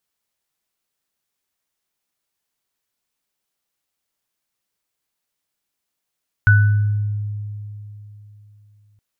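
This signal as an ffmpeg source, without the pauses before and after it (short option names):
-f lavfi -i "aevalsrc='0.376*pow(10,-3*t/3.37)*sin(2*PI*104*t)+0.282*pow(10,-3*t/0.69)*sin(2*PI*1490*t)':d=2.52:s=44100"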